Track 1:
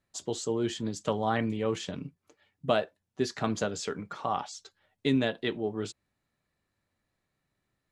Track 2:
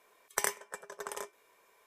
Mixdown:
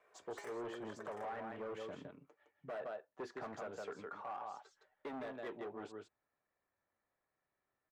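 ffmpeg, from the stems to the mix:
-filter_complex "[0:a]volume=-2.5dB,asplit=2[a][b];[b]volume=-7.5dB[c];[1:a]lowpass=10k,equalizer=f=940:w=5.1:g=-12.5,volume=0dB[d];[c]aecho=0:1:162:1[e];[a][d][e]amix=inputs=3:normalize=0,asoftclip=type=hard:threshold=-31.5dB,acrossover=split=390 2000:gain=0.178 1 0.112[f][g][h];[f][g][h]amix=inputs=3:normalize=0,alimiter=level_in=12dB:limit=-24dB:level=0:latency=1:release=249,volume=-12dB"

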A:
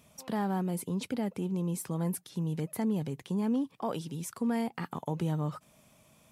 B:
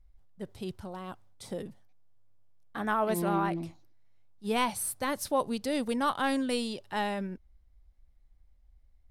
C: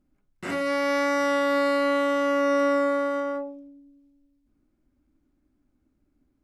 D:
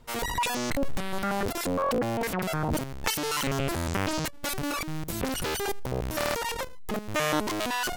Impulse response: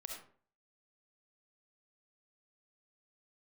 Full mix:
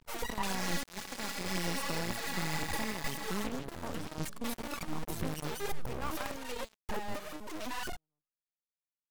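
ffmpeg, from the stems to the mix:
-filter_complex "[0:a]volume=-2.5dB,asplit=3[a][b][c];[b]volume=-18dB[d];[1:a]acompressor=threshold=-35dB:ratio=2,bandpass=f=1.3k:t=q:w=0.56:csg=0,volume=1dB[e];[2:a]highshelf=f=2.4k:t=q:w=3:g=11.5,acrossover=split=390[f][g];[f]acompressor=threshold=-33dB:ratio=6[h];[h][g]amix=inputs=2:normalize=0,aeval=exprs='val(0)*sgn(sin(2*PI*1400*n/s))':c=same,volume=-9dB[i];[3:a]volume=-6.5dB[j];[c]apad=whole_len=401456[k];[e][k]sidechaincompress=threshold=-56dB:ratio=3:attack=5.4:release=293[l];[a][l]amix=inputs=2:normalize=0,acrusher=bits=6:mix=0:aa=0.5,alimiter=level_in=3.5dB:limit=-24dB:level=0:latency=1:release=444,volume=-3.5dB,volume=0dB[m];[i][j]amix=inputs=2:normalize=0,aphaser=in_gain=1:out_gain=1:delay=4.7:decay=0.61:speed=1.9:type=triangular,alimiter=limit=-23dB:level=0:latency=1:release=481,volume=0dB[n];[d]aecho=0:1:301|602|903|1204|1505|1806|2107|2408|2709:1|0.59|0.348|0.205|0.121|0.0715|0.0422|0.0249|0.0147[o];[m][n][o]amix=inputs=3:normalize=0,aeval=exprs='max(val(0),0)':c=same"

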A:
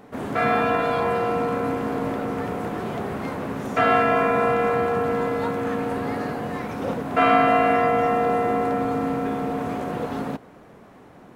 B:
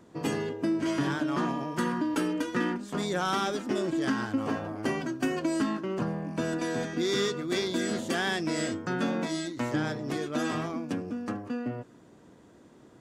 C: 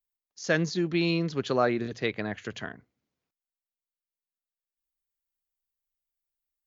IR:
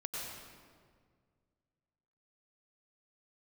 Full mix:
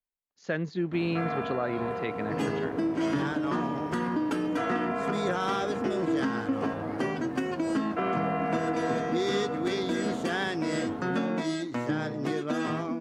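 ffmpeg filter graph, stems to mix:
-filter_complex "[0:a]adelay=800,volume=-11dB[a];[1:a]highpass=100,adelay=2150,volume=2dB[b];[2:a]equalizer=f=5.7k:t=o:w=0.77:g=-12.5,volume=-2dB[c];[a][b][c]amix=inputs=3:normalize=0,aemphasis=mode=reproduction:type=cd,alimiter=limit=-18.5dB:level=0:latency=1:release=263"

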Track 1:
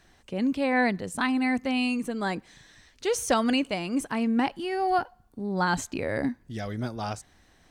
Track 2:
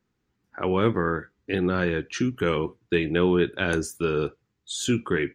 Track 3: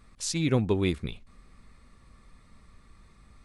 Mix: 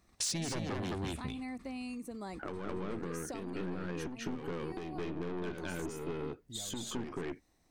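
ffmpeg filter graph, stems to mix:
-filter_complex "[0:a]equalizer=f=315:t=o:w=0.33:g=4,equalizer=f=1.6k:t=o:w=0.33:g=-11,equalizer=f=3.15k:t=o:w=0.33:g=-10,volume=-12dB,asplit=2[a][b];[1:a]equalizer=f=250:t=o:w=1.7:g=8,aeval=exprs='(tanh(10*val(0)+0.55)-tanh(0.55))/10':c=same,adelay=1850,volume=-4dB,asplit=2[c][d];[d]volume=-5.5dB[e];[2:a]agate=range=-26dB:threshold=-50dB:ratio=16:detection=peak,highpass=52,aeval=exprs='0.224*sin(PI/2*3.55*val(0)/0.224)':c=same,volume=-3.5dB,asplit=2[f][g];[g]volume=-12dB[h];[b]apad=whole_len=151734[i];[f][i]sidechaincompress=threshold=-43dB:ratio=8:attack=49:release=1470[j];[a][c]amix=inputs=2:normalize=0,highshelf=f=10k:g=9,acompressor=threshold=-37dB:ratio=10,volume=0dB[k];[e][h]amix=inputs=2:normalize=0,aecho=0:1:213:1[l];[j][k][l]amix=inputs=3:normalize=0,acompressor=threshold=-35dB:ratio=4"

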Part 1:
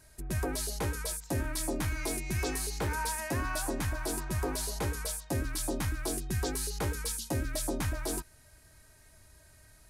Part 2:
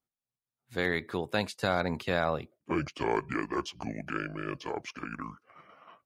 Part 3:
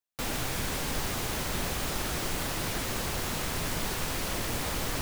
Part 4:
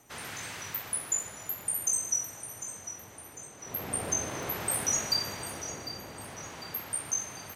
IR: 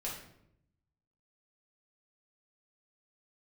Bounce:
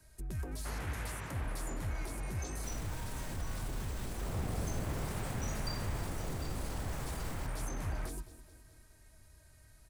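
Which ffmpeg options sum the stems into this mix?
-filter_complex "[0:a]asoftclip=type=tanh:threshold=-28.5dB,volume=-5.5dB,asplit=2[a][b];[b]volume=-19dB[c];[2:a]equalizer=f=7.9k:w=5.5:g=5.5,adelay=2450,volume=-6.5dB,asplit=2[d][e];[e]volume=-23dB[f];[3:a]lowpass=1.9k,adelay=550,volume=1dB[g];[a][d]amix=inputs=2:normalize=0,acrossover=split=200[h][i];[i]acompressor=threshold=-46dB:ratio=2.5[j];[h][j]amix=inputs=2:normalize=0,alimiter=level_in=11dB:limit=-24dB:level=0:latency=1:release=26,volume=-11dB,volume=0dB[k];[c][f]amix=inputs=2:normalize=0,aecho=0:1:210|420|630|840|1050|1260|1470|1680:1|0.55|0.303|0.166|0.0915|0.0503|0.0277|0.0152[l];[g][k][l]amix=inputs=3:normalize=0,lowshelf=f=160:g=6,acrossover=split=210|3000[m][n][o];[n]acompressor=threshold=-42dB:ratio=6[p];[m][p][o]amix=inputs=3:normalize=0"

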